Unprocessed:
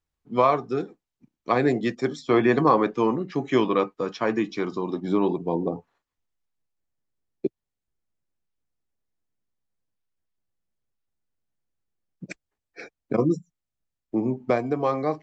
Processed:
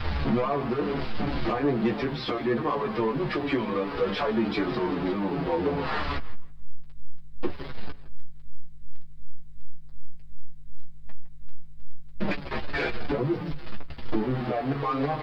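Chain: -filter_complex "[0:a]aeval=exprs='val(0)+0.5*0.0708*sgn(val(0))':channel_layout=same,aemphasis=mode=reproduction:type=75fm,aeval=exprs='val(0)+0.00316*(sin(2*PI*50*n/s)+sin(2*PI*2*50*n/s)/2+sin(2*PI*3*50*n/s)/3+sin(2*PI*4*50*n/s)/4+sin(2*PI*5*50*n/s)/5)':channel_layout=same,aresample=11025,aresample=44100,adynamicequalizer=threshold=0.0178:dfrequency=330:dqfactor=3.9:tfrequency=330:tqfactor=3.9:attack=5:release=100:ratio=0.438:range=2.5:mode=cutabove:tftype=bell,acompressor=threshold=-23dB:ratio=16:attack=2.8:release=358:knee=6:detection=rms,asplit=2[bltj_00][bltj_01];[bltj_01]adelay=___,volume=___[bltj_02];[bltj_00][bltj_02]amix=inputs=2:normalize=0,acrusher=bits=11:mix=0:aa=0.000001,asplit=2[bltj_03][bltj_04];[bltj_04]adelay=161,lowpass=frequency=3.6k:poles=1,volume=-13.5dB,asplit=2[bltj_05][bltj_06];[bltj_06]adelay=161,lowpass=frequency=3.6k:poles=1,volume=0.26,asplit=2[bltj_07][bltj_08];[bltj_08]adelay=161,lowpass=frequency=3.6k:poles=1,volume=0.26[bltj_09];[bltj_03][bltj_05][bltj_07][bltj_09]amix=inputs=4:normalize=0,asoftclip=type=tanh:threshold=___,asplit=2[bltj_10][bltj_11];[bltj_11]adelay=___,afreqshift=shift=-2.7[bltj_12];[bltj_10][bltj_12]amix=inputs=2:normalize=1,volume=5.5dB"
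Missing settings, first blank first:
14, -4.5dB, -20.5dB, 6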